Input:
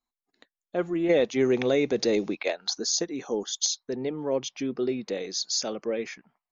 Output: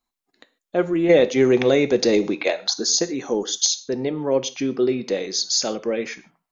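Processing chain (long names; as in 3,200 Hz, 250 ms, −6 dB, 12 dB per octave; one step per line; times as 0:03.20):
reverb whose tail is shaped and stops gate 170 ms falling, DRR 11.5 dB
level +6.5 dB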